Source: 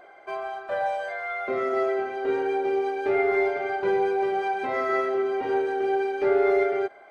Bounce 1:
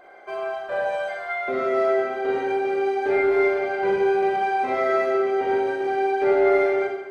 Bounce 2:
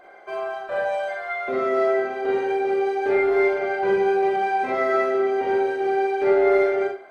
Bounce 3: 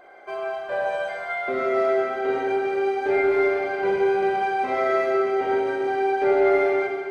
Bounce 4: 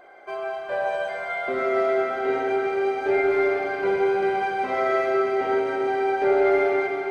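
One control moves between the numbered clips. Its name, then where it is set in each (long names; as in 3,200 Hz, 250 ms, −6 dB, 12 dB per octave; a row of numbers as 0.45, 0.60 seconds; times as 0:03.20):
four-comb reverb, RT60: 0.9, 0.32, 1.9, 4.3 seconds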